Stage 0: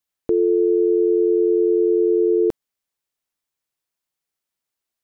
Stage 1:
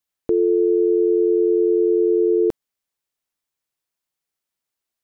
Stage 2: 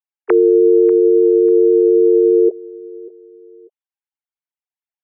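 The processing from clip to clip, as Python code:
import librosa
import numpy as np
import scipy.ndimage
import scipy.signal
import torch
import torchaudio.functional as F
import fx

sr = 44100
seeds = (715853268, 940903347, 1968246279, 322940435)

y1 = x
y2 = fx.sine_speech(y1, sr)
y2 = fx.echo_feedback(y2, sr, ms=592, feedback_pct=27, wet_db=-19.5)
y2 = y2 * librosa.db_to_amplitude(6.5)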